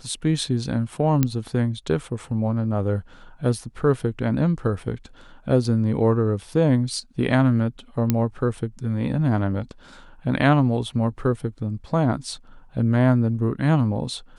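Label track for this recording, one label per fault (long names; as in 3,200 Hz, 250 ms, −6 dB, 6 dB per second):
1.230000	1.230000	click −6 dBFS
8.100000	8.100000	click −6 dBFS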